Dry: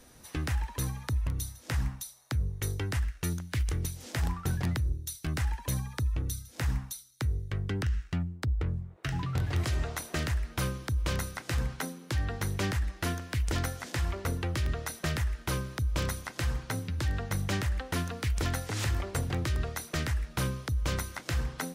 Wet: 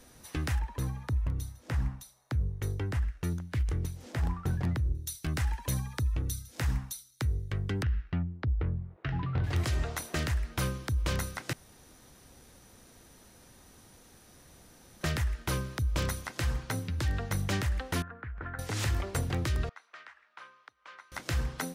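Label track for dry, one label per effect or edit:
0.590000	4.950000	treble shelf 2.3 kHz -10.5 dB
7.830000	9.440000	Gaussian low-pass sigma 2.5 samples
11.530000	15.010000	room tone
18.020000	18.590000	four-pole ladder low-pass 1.7 kHz, resonance 65%
19.690000	21.120000	ladder band-pass 1.5 kHz, resonance 25%

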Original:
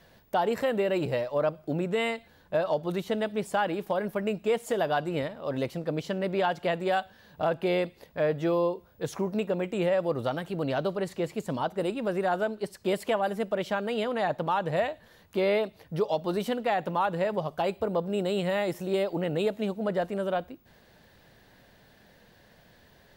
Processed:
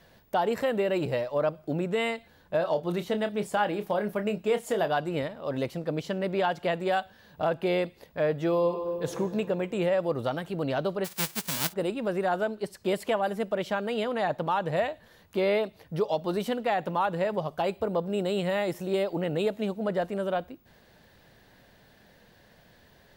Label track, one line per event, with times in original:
2.580000	4.880000	doubling 29 ms -10 dB
8.490000	9.110000	reverb throw, RT60 2.6 s, DRR 5.5 dB
11.040000	11.720000	formants flattened exponent 0.1

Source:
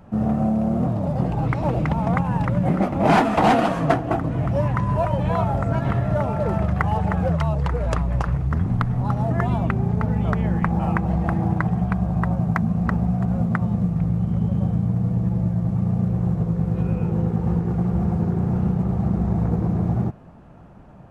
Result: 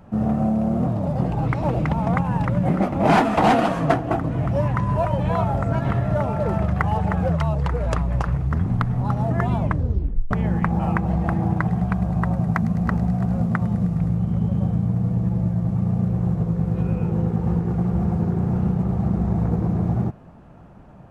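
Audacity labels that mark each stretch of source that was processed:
9.590000	9.590000	tape stop 0.72 s
11.460000	14.140000	feedback echo behind a high-pass 104 ms, feedback 78%, high-pass 4.5 kHz, level -5.5 dB

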